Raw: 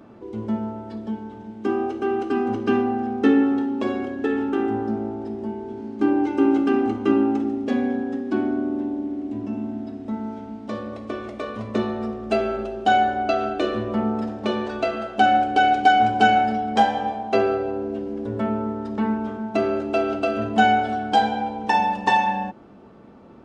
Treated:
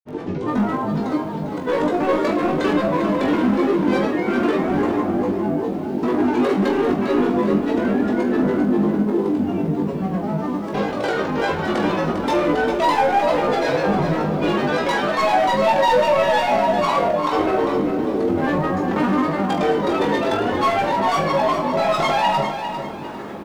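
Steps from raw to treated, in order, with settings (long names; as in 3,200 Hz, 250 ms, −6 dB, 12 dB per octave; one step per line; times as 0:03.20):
low-shelf EQ 220 Hz −10.5 dB
in parallel at +2.5 dB: downward compressor, threshold −30 dBFS, peak gain reduction 17 dB
on the sum: brickwall limiter −14.5 dBFS, peak gain reduction 10.5 dB
upward compression, threshold −30 dBFS
granular cloud 100 ms, grains 20 per second, pitch spread up and down by 7 semitones
hard clipping −21 dBFS, distortion −15 dB
on a send: reverse bouncing-ball delay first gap 20 ms, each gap 1.2×, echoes 5
on the sum: feedback echo at a low word length 400 ms, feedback 35%, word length 9 bits, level −8.5 dB
level +4 dB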